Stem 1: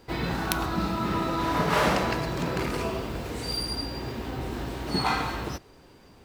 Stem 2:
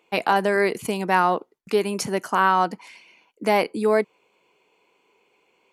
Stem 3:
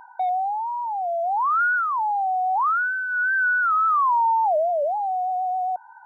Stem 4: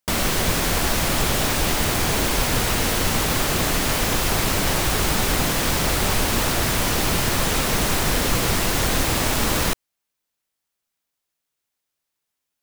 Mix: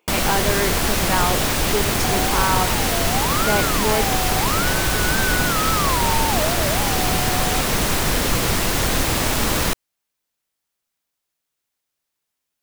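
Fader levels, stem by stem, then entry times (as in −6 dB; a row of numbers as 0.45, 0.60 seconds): muted, −3.0 dB, −5.0 dB, +1.0 dB; muted, 0.00 s, 1.85 s, 0.00 s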